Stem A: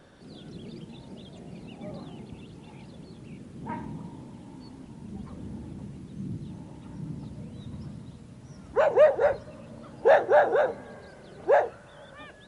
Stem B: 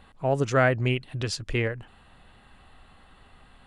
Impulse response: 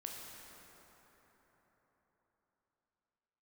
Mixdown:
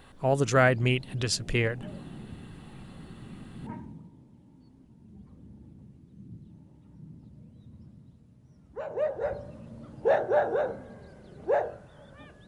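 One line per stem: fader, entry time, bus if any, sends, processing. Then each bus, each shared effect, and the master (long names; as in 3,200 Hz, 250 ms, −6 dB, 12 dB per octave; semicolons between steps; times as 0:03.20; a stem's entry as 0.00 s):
0:03.64 −8.5 dB → 0:04.11 −18.5 dB → 0:08.70 −18.5 dB → 0:09.46 −7.5 dB, 0.00 s, no send, low-shelf EQ 380 Hz +11 dB; hum removal 48.21 Hz, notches 34
−0.5 dB, 0.00 s, no send, high-shelf EQ 6,400 Hz +10 dB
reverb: not used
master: no processing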